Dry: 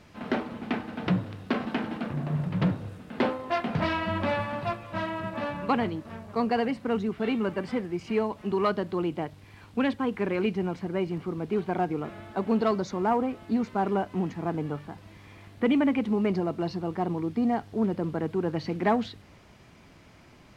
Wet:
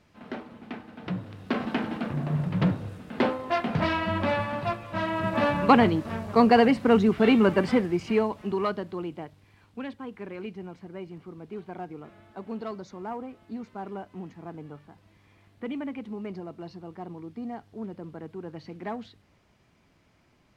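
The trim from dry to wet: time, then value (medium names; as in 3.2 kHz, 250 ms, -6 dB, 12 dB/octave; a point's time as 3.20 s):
1.00 s -8.5 dB
1.63 s +1.5 dB
4.97 s +1.5 dB
5.38 s +8 dB
7.67 s +8 dB
8.83 s -4 dB
9.83 s -10.5 dB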